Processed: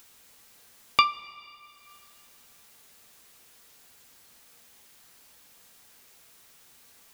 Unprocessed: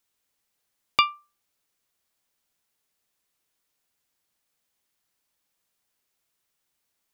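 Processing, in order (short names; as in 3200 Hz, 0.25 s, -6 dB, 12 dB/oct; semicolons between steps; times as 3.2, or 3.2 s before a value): upward compressor, threshold -39 dBFS; two-slope reverb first 0.24 s, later 2.9 s, from -18 dB, DRR 7.5 dB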